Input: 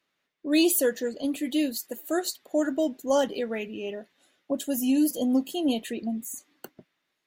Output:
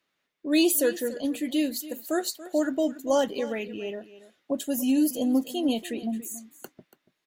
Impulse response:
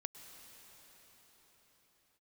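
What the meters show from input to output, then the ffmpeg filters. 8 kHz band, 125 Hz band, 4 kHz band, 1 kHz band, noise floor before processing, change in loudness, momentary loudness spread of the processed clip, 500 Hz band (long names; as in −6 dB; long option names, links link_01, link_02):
0.0 dB, can't be measured, 0.0 dB, 0.0 dB, −79 dBFS, 0.0 dB, 12 LU, 0.0 dB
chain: -af "aecho=1:1:284:0.158"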